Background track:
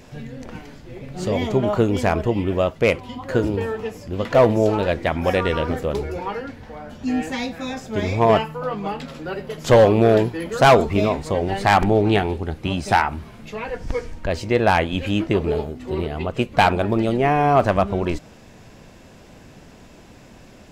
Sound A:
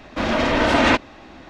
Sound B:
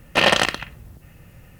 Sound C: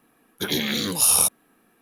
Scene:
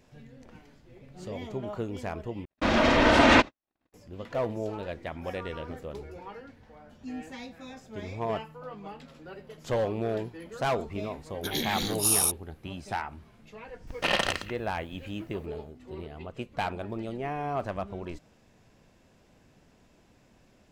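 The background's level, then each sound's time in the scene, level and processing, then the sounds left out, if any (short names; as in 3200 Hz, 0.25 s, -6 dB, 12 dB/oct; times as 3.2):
background track -15.5 dB
2.45 replace with A -2 dB + gate -38 dBFS, range -55 dB
11.03 add C -6.5 dB
13.87 add B -10 dB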